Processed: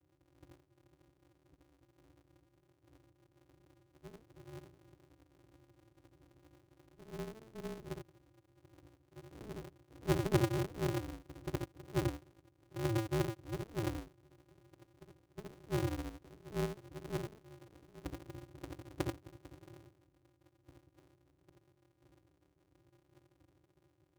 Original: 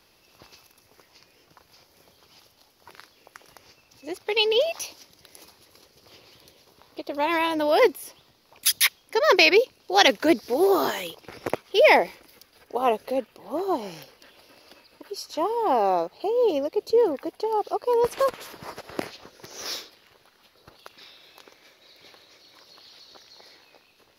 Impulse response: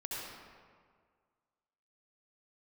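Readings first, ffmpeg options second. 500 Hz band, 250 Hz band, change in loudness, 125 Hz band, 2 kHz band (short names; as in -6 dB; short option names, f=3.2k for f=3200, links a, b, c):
-20.0 dB, -10.5 dB, -17.0 dB, n/a, -23.5 dB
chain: -filter_complex "[0:a]asuperpass=centerf=210:order=12:qfactor=2[a];[1:a]atrim=start_sample=2205,atrim=end_sample=4410[b];[a][b]afir=irnorm=-1:irlink=0,aeval=exprs='val(0)*sgn(sin(2*PI*110*n/s))':c=same,volume=8dB"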